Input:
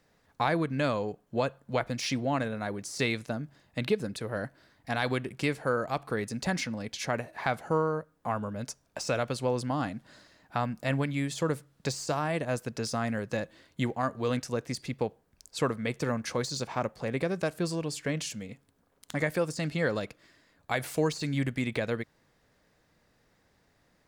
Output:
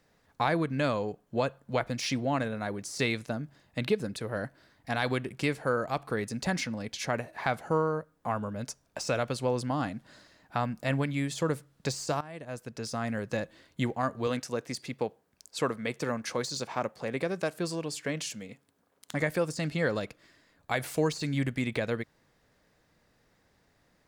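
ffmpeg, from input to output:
-filter_complex "[0:a]asettb=1/sr,asplit=3[a][b][c];[a]atrim=end=14.274[d];[b]atrim=start=14.27:end=19.14,asetpts=PTS-STARTPTS,afade=t=in:d=0.004:c=qsin,afade=t=out:st=4.866:d=0.004:c=qsin,highpass=f=200:p=1[e];[c]atrim=start=19.136[f];[d][e]acrossfade=d=0.004:c1=hsin:c2=qsin[g];[g][f]acrossfade=d=0.004:c1=qsin:c2=hsin,asplit=2[h][i];[h]atrim=end=12.21,asetpts=PTS-STARTPTS,afade=t=out:st=12.206:d=0.004:c=hsin:silence=0.133352[j];[i]atrim=start=12.21,asetpts=PTS-STARTPTS,afade=t=in:d=1.07:silence=0.133352[k];[j][k]concat=n=2:v=0:a=1"

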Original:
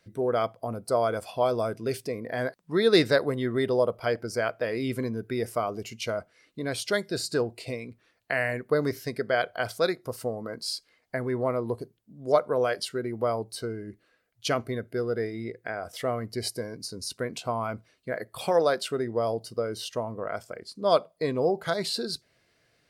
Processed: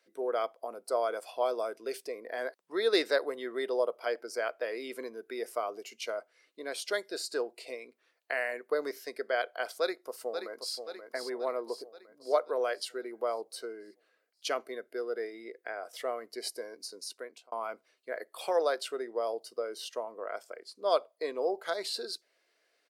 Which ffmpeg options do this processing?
-filter_complex "[0:a]asplit=2[a][b];[b]afade=t=in:st=9.8:d=0.01,afade=t=out:st=10.76:d=0.01,aecho=0:1:530|1060|1590|2120|2650|3180|3710:0.421697|0.231933|0.127563|0.0701598|0.0385879|0.0212233|0.0116728[c];[a][c]amix=inputs=2:normalize=0,asplit=2[d][e];[d]atrim=end=17.52,asetpts=PTS-STARTPTS,afade=t=out:st=17:d=0.52[f];[e]atrim=start=17.52,asetpts=PTS-STARTPTS,afade=t=in:d=0.004:c=hsin[g];[f][g]concat=n=2:v=0:a=1,highpass=f=360:w=0.5412,highpass=f=360:w=1.3066,volume=-5dB"

